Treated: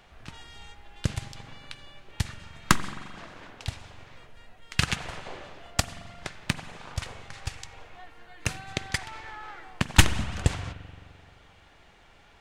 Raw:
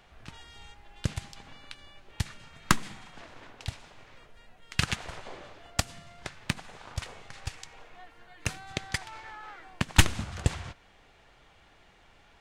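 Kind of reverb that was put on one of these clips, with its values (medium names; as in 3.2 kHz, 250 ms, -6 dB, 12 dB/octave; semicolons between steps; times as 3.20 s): spring tank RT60 2.2 s, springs 43 ms, chirp 60 ms, DRR 13 dB; trim +2.5 dB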